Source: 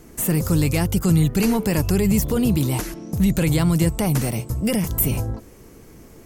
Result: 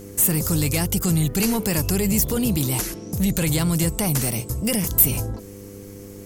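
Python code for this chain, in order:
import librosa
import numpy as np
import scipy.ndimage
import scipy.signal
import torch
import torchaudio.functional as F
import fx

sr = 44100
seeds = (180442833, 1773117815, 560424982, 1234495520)

y = fx.dmg_buzz(x, sr, base_hz=100.0, harmonics=5, level_db=-38.0, tilt_db=-1, odd_only=False)
y = 10.0 ** (-11.0 / 20.0) * np.tanh(y / 10.0 ** (-11.0 / 20.0))
y = fx.high_shelf(y, sr, hz=3200.0, db=10.0)
y = y * librosa.db_to_amplitude(-2.0)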